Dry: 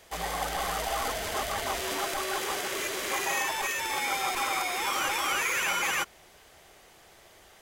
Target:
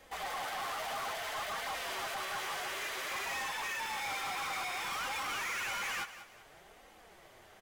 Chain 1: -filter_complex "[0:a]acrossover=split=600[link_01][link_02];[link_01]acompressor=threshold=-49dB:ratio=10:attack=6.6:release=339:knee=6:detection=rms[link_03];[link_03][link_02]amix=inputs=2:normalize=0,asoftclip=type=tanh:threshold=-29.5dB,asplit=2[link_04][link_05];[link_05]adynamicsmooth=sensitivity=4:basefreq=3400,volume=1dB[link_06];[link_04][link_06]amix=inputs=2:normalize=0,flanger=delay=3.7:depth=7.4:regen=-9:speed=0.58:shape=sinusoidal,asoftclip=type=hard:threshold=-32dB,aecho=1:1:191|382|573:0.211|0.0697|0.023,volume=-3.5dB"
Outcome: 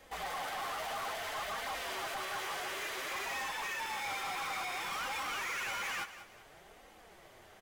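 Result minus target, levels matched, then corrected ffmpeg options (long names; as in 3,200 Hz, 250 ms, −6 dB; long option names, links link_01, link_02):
downward compressor: peak gain reduction −6 dB; soft clipping: distortion +7 dB
-filter_complex "[0:a]acrossover=split=600[link_01][link_02];[link_01]acompressor=threshold=-55.5dB:ratio=10:attack=6.6:release=339:knee=6:detection=rms[link_03];[link_03][link_02]amix=inputs=2:normalize=0,asoftclip=type=tanh:threshold=-23dB,asplit=2[link_04][link_05];[link_05]adynamicsmooth=sensitivity=4:basefreq=3400,volume=1dB[link_06];[link_04][link_06]amix=inputs=2:normalize=0,flanger=delay=3.7:depth=7.4:regen=-9:speed=0.58:shape=sinusoidal,asoftclip=type=hard:threshold=-32dB,aecho=1:1:191|382|573:0.211|0.0697|0.023,volume=-3.5dB"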